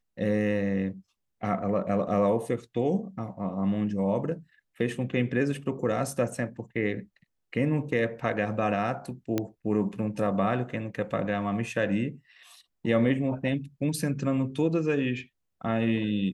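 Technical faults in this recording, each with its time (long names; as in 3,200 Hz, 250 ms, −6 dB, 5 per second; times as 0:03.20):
0:09.38: click −13 dBFS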